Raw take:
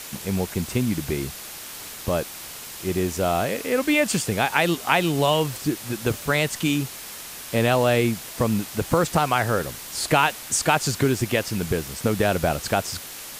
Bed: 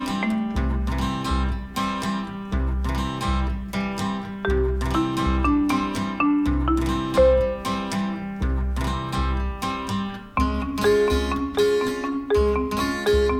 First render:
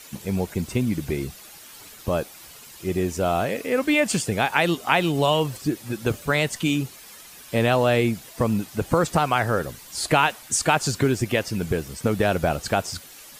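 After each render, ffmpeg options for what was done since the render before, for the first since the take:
-af "afftdn=nr=10:nf=-38"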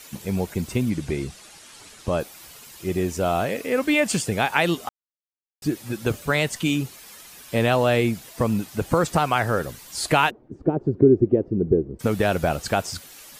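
-filter_complex "[0:a]asettb=1/sr,asplit=3[a][b][c];[a]atrim=end=0.904[d];[b]atrim=start=0.9:end=2.2,asetpts=PTS-STARTPTS,afade=t=in:d=0.004:c=qsin,afade=t=out:st=1.296:d=0.004:c=qsin,lowpass=f=10k:w=0.5412,lowpass=f=10k:w=1.3066[e];[c]atrim=start=2.196[f];[d][e]acrossfade=d=0.004:c1=hsin:c2=qsin[g];[g][f]acrossfade=d=0.004:c1=qsin:c2=hsin,asplit=3[h][i][j];[h]afade=t=out:st=10.29:d=0.02[k];[i]lowpass=f=370:t=q:w=3.4,afade=t=in:st=10.29:d=0.02,afade=t=out:st=11.99:d=0.02[l];[j]afade=t=in:st=11.99:d=0.02[m];[k][l][m]amix=inputs=3:normalize=0,asplit=3[n][o][p];[n]atrim=end=4.89,asetpts=PTS-STARTPTS,afade=t=out:st=4.886:d=0.004:c=hsin[q];[o]atrim=start=4.89:end=5.62,asetpts=PTS-STARTPTS,volume=0[r];[p]atrim=start=5.62,asetpts=PTS-STARTPTS,afade=t=in:d=0.004:c=hsin[s];[q][r][s]concat=n=3:v=0:a=1"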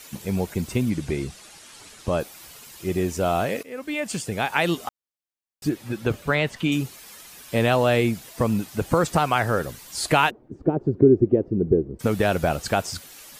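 -filter_complex "[0:a]asettb=1/sr,asplit=3[a][b][c];[a]atrim=end=5.694[d];[b]atrim=start=5.69:end=6.72,asetpts=PTS-STARTPTS,afade=t=in:d=0.004:c=qsin,afade=t=out:st=1.026:d=0.004:c=qsin,acrossover=split=4000[e][f];[f]acompressor=threshold=-49dB:ratio=4:attack=1:release=60[g];[e][g]amix=inputs=2:normalize=0[h];[c]atrim=start=6.716[i];[d][h]acrossfade=d=0.004:c1=hsin:c2=qsin[j];[j][i]acrossfade=d=0.004:c1=qsin:c2=hsin,asplit=2[k][l];[k]atrim=end=3.63,asetpts=PTS-STARTPTS,afade=t=out:st=3.626:d=0.004:c=hsin:silence=0.158489[m];[l]atrim=start=3.63,asetpts=PTS-STARTPTS,afade=t=in:d=1.19:silence=0.158489[n];[m][n]concat=n=2:v=0:a=1"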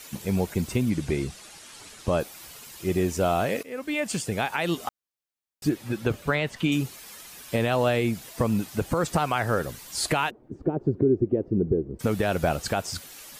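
-af "alimiter=limit=-13dB:level=0:latency=1:release=235"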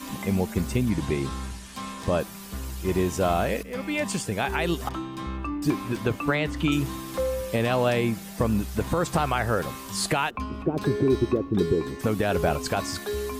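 -filter_complex "[1:a]volume=-11dB[a];[0:a][a]amix=inputs=2:normalize=0"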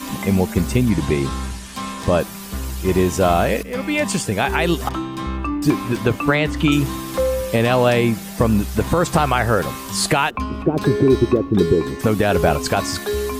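-af "volume=7.5dB"

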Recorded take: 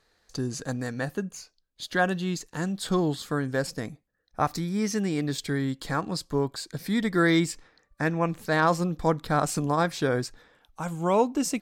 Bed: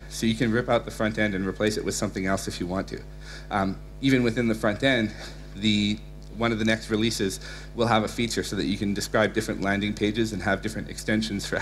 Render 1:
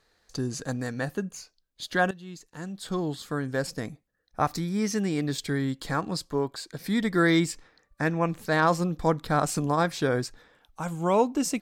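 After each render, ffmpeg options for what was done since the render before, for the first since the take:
-filter_complex "[0:a]asettb=1/sr,asplit=3[a][b][c];[a]atrim=end=6.294[d];[b]atrim=start=6.29:end=6.84,asetpts=PTS-STARTPTS,afade=t=in:d=0.004:c=qsin,afade=t=out:st=0.546:d=0.004:c=qsin,bass=f=250:g=-5,treble=f=4k:g=-3[e];[c]atrim=start=6.836[f];[d][e]acrossfade=d=0.004:c1=hsin:c2=qsin[g];[g][f]acrossfade=d=0.004:c1=qsin:c2=hsin,asplit=2[h][i];[h]atrim=end=2.11,asetpts=PTS-STARTPTS,afade=t=out:st=2.106:d=0.004:c=hsin:silence=0.149624[j];[i]atrim=start=2.11,asetpts=PTS-STARTPTS,afade=t=in:d=1.72:silence=0.149624[k];[j][k]concat=n=2:v=0:a=1"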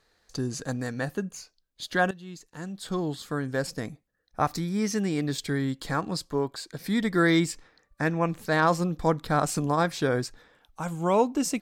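-af anull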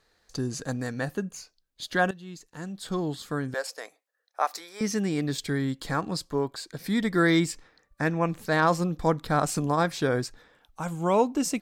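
-filter_complex "[0:a]asettb=1/sr,asplit=3[a][b][c];[a]atrim=end=3.544[d];[b]atrim=start=3.54:end=4.81,asetpts=PTS-STARTPTS,afade=t=in:d=0.004:c=qsin,afade=t=out:st=1.266:d=0.004:c=qsin,highpass=f=510:w=0.5412,highpass=f=510:w=1.3066[e];[c]atrim=start=4.806[f];[d][e]acrossfade=d=0.004:c1=hsin:c2=qsin[g];[g][f]acrossfade=d=0.004:c1=qsin:c2=hsin"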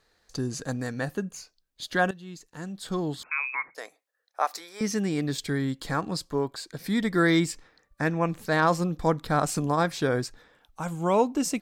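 -filter_complex "[0:a]asettb=1/sr,asplit=3[a][b][c];[a]atrim=end=3.234[d];[b]atrim=start=3.23:end=3.75,asetpts=PTS-STARTPTS,afade=t=in:d=0.004:c=qsin,afade=t=out:st=0.516:d=0.004:c=qsin,lowpass=f=2.3k:t=q:w=0.5098,lowpass=f=2.3k:t=q:w=0.6013,lowpass=f=2.3k:t=q:w=0.9,lowpass=f=2.3k:t=q:w=2.563,afreqshift=-2700[e];[c]atrim=start=3.746[f];[d][e]acrossfade=d=0.004:c1=hsin:c2=qsin[g];[g][f]acrossfade=d=0.004:c1=qsin:c2=hsin"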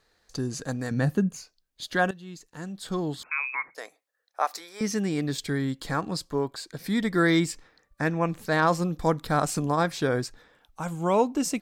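-filter_complex "[0:a]asettb=1/sr,asplit=3[a][b][c];[a]atrim=end=0.914[d];[b]atrim=start=0.91:end=1.37,asetpts=PTS-STARTPTS,afade=t=in:d=0.004:c=qsin,afade=t=out:st=0.456:d=0.004:c=qsin,equalizer=f=150:t=o:w=2:g=10.5[e];[c]atrim=start=1.366[f];[d][e]acrossfade=d=0.004:c1=hsin:c2=qsin[g];[g][f]acrossfade=d=0.004:c1=qsin:c2=hsin,asettb=1/sr,asplit=3[h][i][j];[h]atrim=end=8.844[k];[i]atrim=start=8.84:end=9.46,asetpts=PTS-STARTPTS,afade=t=in:d=0.004:c=qsin,afade=t=out:st=0.616:d=0.004:c=qsin,highshelf=f=6.8k:g=5[l];[j]atrim=start=9.456[m];[k][l]acrossfade=d=0.004:c1=hsin:c2=qsin[n];[n][m]acrossfade=d=0.004:c1=qsin:c2=hsin"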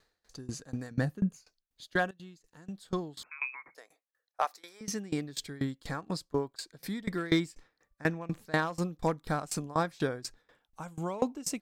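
-af "volume=14dB,asoftclip=hard,volume=-14dB,aeval=exprs='val(0)*pow(10,-23*if(lt(mod(4.1*n/s,1),2*abs(4.1)/1000),1-mod(4.1*n/s,1)/(2*abs(4.1)/1000),(mod(4.1*n/s,1)-2*abs(4.1)/1000)/(1-2*abs(4.1)/1000))/20)':c=same"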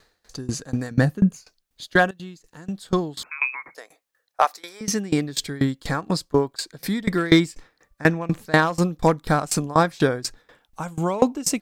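-af "volume=11.5dB"

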